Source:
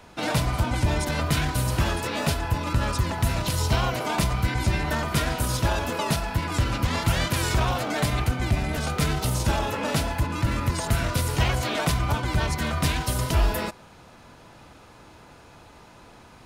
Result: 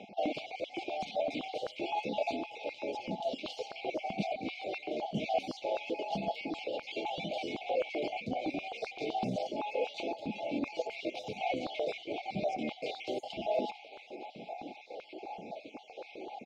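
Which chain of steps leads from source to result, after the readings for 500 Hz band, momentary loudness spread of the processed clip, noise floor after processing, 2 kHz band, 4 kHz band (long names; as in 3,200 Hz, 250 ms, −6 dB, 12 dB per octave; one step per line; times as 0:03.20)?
−3.5 dB, 11 LU, −53 dBFS, −13.0 dB, −12.0 dB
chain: time-frequency cells dropped at random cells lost 30%
mid-hump overdrive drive 15 dB, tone 2,700 Hz, clips at −10.5 dBFS
reversed playback
downward compressor 12 to 1, threshold −32 dBFS, peak gain reduction 14.5 dB
reversed playback
brick-wall band-stop 860–2,100 Hz
high-frequency loss of the air 190 metres
echo with shifted repeats 449 ms, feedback 44%, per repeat −38 Hz, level −18 dB
high-pass on a step sequencer 7.8 Hz 200–1,500 Hz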